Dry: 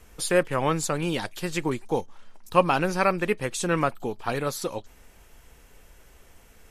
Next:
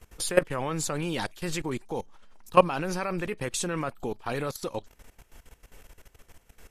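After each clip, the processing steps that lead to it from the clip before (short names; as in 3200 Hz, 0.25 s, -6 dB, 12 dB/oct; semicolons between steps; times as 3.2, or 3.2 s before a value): level quantiser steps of 17 dB; gain +4 dB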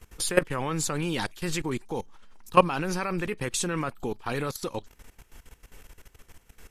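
bell 620 Hz -5 dB 0.61 oct; gain +2 dB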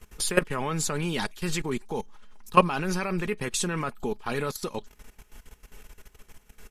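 comb 4.8 ms, depth 39%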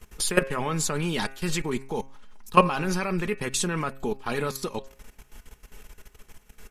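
de-hum 134.5 Hz, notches 21; gain +1.5 dB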